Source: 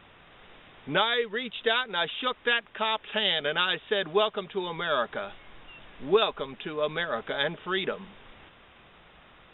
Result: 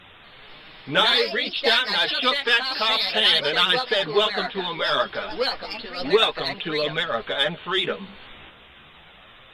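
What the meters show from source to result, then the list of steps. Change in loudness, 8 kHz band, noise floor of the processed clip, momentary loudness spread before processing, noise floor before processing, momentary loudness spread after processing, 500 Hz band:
+6.5 dB, no reading, -49 dBFS, 9 LU, -55 dBFS, 10 LU, +4.0 dB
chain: treble shelf 3.1 kHz +12 dB; in parallel at -7 dB: saturation -20 dBFS, distortion -9 dB; on the sum: ever faster or slower copies 238 ms, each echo +3 st, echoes 2, each echo -6 dB; chorus voices 2, 0.3 Hz, delay 11 ms, depth 4.8 ms; vibrato 14 Hz 34 cents; trim +3.5 dB; MP3 112 kbps 32 kHz

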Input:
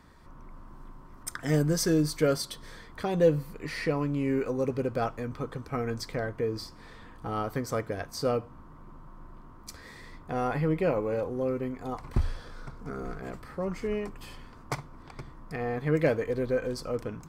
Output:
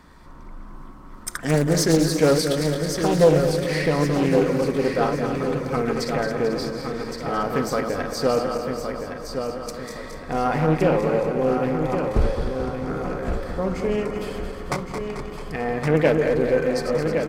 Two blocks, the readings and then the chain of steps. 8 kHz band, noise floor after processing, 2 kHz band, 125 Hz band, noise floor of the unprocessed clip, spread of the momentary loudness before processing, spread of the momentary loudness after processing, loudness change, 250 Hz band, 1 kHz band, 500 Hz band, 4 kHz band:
+8.0 dB, -39 dBFS, +9.0 dB, +7.0 dB, -50 dBFS, 21 LU, 12 LU, +7.5 dB, +8.0 dB, +9.5 dB, +9.0 dB, +9.0 dB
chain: backward echo that repeats 110 ms, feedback 77%, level -7 dB; peaking EQ 110 Hz -15 dB 0.23 oct; on a send: feedback delay 1116 ms, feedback 39%, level -7 dB; on the sum: loudspeaker Doppler distortion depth 0.32 ms; trim +6.5 dB

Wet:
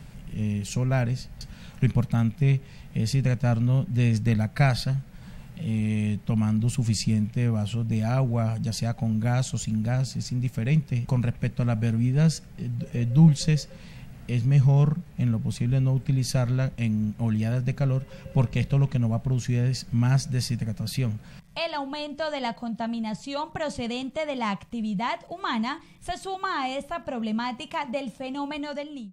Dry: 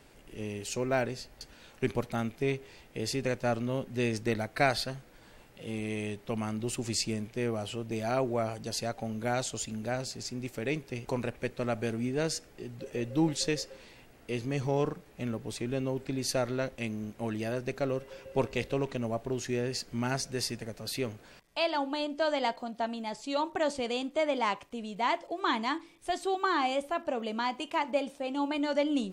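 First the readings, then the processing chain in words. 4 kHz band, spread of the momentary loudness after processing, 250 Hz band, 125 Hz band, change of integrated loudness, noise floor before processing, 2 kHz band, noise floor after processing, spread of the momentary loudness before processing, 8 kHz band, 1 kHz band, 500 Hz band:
+1.0 dB, 10 LU, +7.0 dB, +16.0 dB, +6.5 dB, -57 dBFS, +0.5 dB, -47 dBFS, 8 LU, +1.0 dB, 0.0 dB, -2.5 dB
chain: fade out at the end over 0.60 s; resonant low shelf 240 Hz +11 dB, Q 3; in parallel at -1 dB: compression, threshold -44 dBFS, peak gain reduction 28.5 dB

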